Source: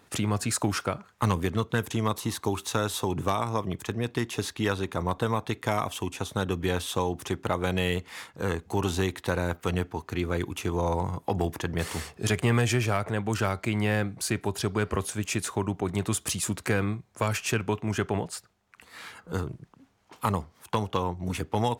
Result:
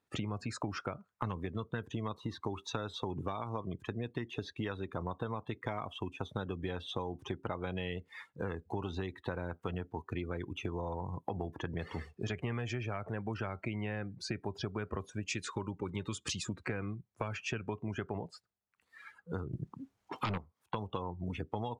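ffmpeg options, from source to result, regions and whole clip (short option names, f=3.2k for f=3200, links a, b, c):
-filter_complex "[0:a]asettb=1/sr,asplit=3[a][b][c];[a]atrim=end=15.284[d];[b]atrim=start=15.28:end=16.43,asetpts=PTS-STARTPTS,afade=t=in:d=0.004:c=qsin,afade=t=out:st=1.146:d=0.004:c=qsin,asuperstop=centerf=700:order=12:qfactor=4.1,highshelf=f=2.1k:g=7.5[e];[c]atrim=start=16.426[f];[d][e]acrossfade=d=0.004:c1=hsin:c2=qsin[g];[g][f]acrossfade=d=0.004:c1=qsin:c2=hsin,asettb=1/sr,asplit=3[h][i][j];[h]atrim=end=19.534[k];[i]atrim=start=19.53:end=20.38,asetpts=PTS-STARTPTS,afade=t=in:d=0.004:c=qsin,afade=t=out:st=0.846:d=0.004:c=qsin,aeval=exprs='0.2*sin(PI/2*2.51*val(0)/0.2)':c=same,highshelf=f=5.9k:g=4.5[l];[j]atrim=start=20.376[m];[k][l]acrossfade=d=0.004:c1=hsin:c2=qsin[n];[n][m]acrossfade=d=0.004:c1=qsin:c2=hsin,acrossover=split=6300[o][p];[p]acompressor=threshold=-50dB:ratio=4:attack=1:release=60[q];[o][q]amix=inputs=2:normalize=0,afftdn=nr=22:nf=-37,acompressor=threshold=-32dB:ratio=6,volume=-2dB"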